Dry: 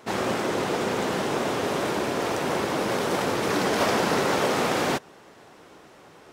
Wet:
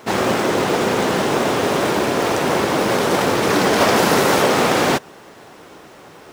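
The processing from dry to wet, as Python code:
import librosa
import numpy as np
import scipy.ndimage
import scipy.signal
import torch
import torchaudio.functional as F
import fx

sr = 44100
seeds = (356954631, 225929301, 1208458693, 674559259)

y = fx.high_shelf(x, sr, hz=11000.0, db=10.5, at=(3.96, 4.42))
y = fx.quant_companded(y, sr, bits=6)
y = F.gain(torch.from_numpy(y), 8.0).numpy()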